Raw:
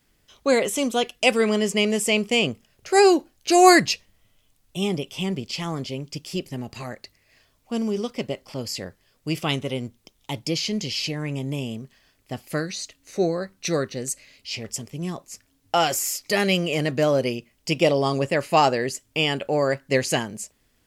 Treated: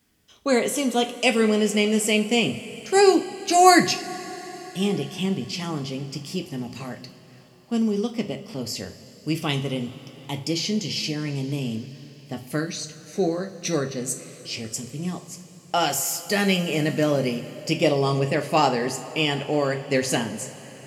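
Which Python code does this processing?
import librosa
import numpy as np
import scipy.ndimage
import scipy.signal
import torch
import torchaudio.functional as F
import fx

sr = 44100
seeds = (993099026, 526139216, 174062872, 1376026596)

y = scipy.signal.sosfilt(scipy.signal.butter(2, 100.0, 'highpass', fs=sr, output='sos'), x)
y = fx.bass_treble(y, sr, bass_db=6, treble_db=2)
y = fx.rev_double_slope(y, sr, seeds[0], early_s=0.32, late_s=4.9, knee_db=-18, drr_db=5.0)
y = y * librosa.db_to_amplitude(-2.5)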